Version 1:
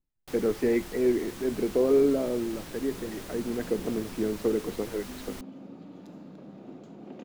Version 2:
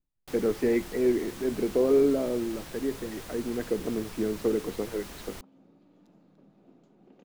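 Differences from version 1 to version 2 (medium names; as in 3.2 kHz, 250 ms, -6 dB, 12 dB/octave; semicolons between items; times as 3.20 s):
second sound -11.0 dB; reverb: off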